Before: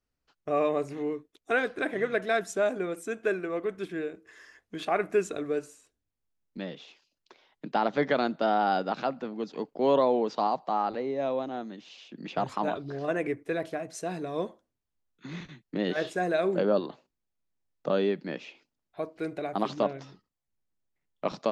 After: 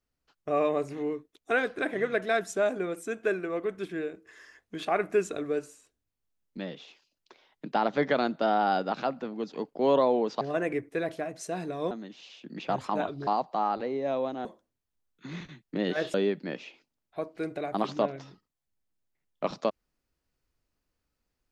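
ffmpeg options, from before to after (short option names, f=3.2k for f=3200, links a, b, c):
-filter_complex "[0:a]asplit=6[a][b][c][d][e][f];[a]atrim=end=10.412[g];[b]atrim=start=12.948:end=14.452[h];[c]atrim=start=11.588:end=12.952[i];[d]atrim=start=10.408:end=11.592[j];[e]atrim=start=14.448:end=16.142[k];[f]atrim=start=17.948[l];[g][h]acrossfade=d=0.004:c1=hsin:c2=hsin[m];[m][i]acrossfade=d=0.004:c1=hsin:c2=hsin[n];[n][j]acrossfade=d=0.004:c1=hsin:c2=hsin[o];[o][k]acrossfade=d=0.004:c1=hsin:c2=hsin[p];[p][l]acrossfade=d=0.004:c1=hsin:c2=hsin"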